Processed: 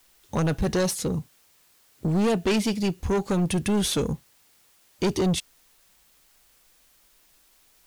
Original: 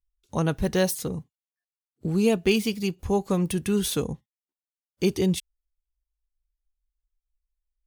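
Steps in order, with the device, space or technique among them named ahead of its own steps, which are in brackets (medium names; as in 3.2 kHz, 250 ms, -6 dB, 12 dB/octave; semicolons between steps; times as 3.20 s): compact cassette (saturation -25 dBFS, distortion -8 dB; low-pass 9.5 kHz 12 dB/octave; wow and flutter 25 cents; white noise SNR 33 dB); trim +6 dB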